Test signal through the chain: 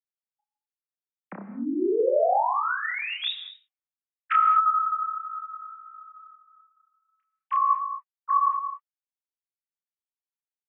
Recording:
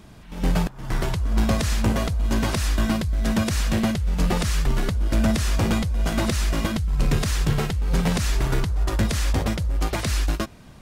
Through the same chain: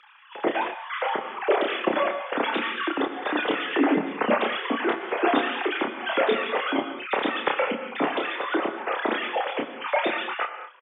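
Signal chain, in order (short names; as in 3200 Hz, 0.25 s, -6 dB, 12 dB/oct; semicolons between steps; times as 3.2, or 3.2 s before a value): sine-wave speech; HPF 200 Hz 12 dB/oct; flange 0.67 Hz, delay 2.2 ms, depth 7.2 ms, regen -35%; frequency shift +25 Hz; doubler 30 ms -4 dB; non-linear reverb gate 0.25 s flat, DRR 7.5 dB; gain -3 dB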